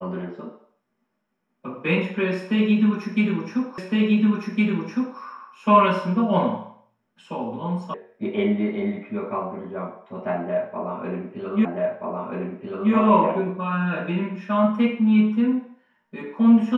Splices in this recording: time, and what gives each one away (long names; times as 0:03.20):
0:03.78: the same again, the last 1.41 s
0:07.94: cut off before it has died away
0:11.65: the same again, the last 1.28 s